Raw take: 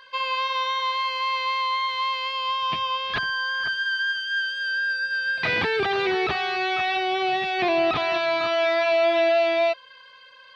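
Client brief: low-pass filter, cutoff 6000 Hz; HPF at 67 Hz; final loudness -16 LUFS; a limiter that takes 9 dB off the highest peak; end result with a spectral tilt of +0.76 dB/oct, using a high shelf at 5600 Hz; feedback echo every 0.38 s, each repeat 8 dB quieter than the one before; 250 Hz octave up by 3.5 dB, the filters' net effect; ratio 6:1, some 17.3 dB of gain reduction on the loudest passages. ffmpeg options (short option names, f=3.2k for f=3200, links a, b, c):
-af "highpass=67,lowpass=6k,equalizer=f=250:t=o:g=6.5,highshelf=f=5.6k:g=-3.5,acompressor=threshold=-37dB:ratio=6,alimiter=level_in=11dB:limit=-24dB:level=0:latency=1,volume=-11dB,aecho=1:1:380|760|1140|1520|1900:0.398|0.159|0.0637|0.0255|0.0102,volume=23dB"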